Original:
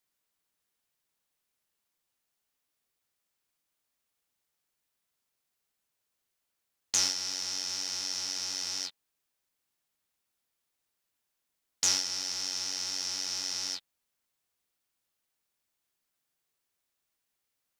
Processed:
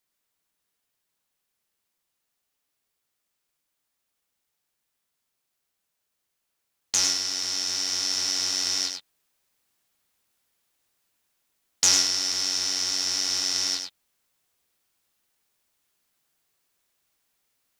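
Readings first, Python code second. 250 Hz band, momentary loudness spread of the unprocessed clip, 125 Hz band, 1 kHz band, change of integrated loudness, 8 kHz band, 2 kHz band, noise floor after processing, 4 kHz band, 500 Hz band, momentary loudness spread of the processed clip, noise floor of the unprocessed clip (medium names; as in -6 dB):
+8.0 dB, 7 LU, +6.5 dB, +6.5 dB, +7.5 dB, +7.0 dB, +7.5 dB, -80 dBFS, +7.5 dB, +7.5 dB, 7 LU, -83 dBFS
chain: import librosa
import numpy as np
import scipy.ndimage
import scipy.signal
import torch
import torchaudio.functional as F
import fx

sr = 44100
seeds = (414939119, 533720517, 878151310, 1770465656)

p1 = fx.rider(x, sr, range_db=10, speed_s=2.0)
p2 = p1 + fx.echo_single(p1, sr, ms=100, db=-6.0, dry=0)
y = p2 * 10.0 ** (6.0 / 20.0)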